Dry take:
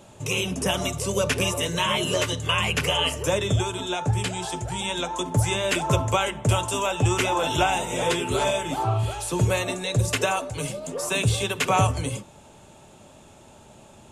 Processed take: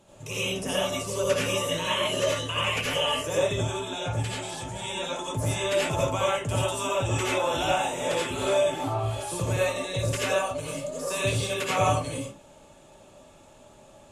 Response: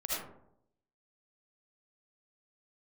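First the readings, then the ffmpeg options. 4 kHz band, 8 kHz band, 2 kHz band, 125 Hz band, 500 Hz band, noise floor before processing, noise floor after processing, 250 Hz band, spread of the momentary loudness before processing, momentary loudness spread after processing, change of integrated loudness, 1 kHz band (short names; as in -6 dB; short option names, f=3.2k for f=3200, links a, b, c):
-3.0 dB, -3.5 dB, -3.0 dB, -5.5 dB, 0.0 dB, -50 dBFS, -53 dBFS, -4.5 dB, 6 LU, 7 LU, -3.0 dB, -3.5 dB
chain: -filter_complex "[1:a]atrim=start_sample=2205,atrim=end_sample=6174,asetrate=39690,aresample=44100[a];[0:a][a]afir=irnorm=-1:irlink=0,volume=-7dB"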